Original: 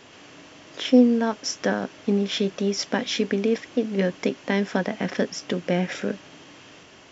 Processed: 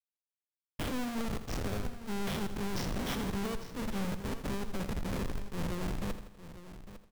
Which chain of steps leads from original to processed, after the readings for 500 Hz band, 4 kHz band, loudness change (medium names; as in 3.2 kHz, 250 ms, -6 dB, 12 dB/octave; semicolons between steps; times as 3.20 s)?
-16.0 dB, -13.0 dB, -13.0 dB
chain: spectrogram pixelated in time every 100 ms; Schmitt trigger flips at -27.5 dBFS; peak limiter -29 dBFS, peak gain reduction 8.5 dB; wavefolder -33.5 dBFS; delay 853 ms -13.5 dB; bit-crushed delay 82 ms, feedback 55%, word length 11-bit, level -11.5 dB; trim +3 dB